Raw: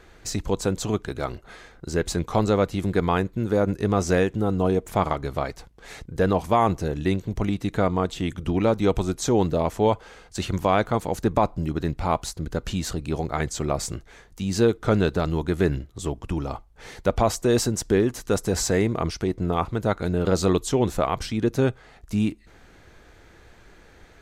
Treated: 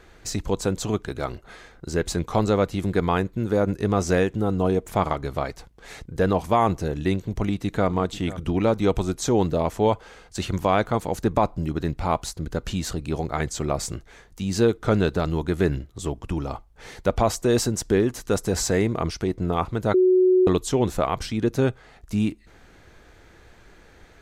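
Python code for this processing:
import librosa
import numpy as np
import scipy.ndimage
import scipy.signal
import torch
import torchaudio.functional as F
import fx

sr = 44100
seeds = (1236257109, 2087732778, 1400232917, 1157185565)

y = fx.echo_throw(x, sr, start_s=7.14, length_s=0.76, ms=490, feedback_pct=10, wet_db=-16.5)
y = fx.edit(y, sr, fx.bleep(start_s=19.94, length_s=0.53, hz=369.0, db=-13.5), tone=tone)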